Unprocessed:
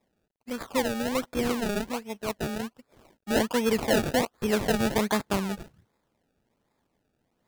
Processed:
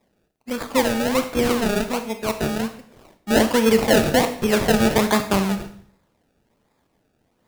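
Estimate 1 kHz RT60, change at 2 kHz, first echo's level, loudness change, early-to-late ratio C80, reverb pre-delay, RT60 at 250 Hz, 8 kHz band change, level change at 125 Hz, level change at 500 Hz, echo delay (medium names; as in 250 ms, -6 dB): 0.55 s, +7.5 dB, no echo, +7.5 dB, 13.5 dB, 23 ms, 0.70 s, +7.5 dB, +8.0 dB, +8.0 dB, no echo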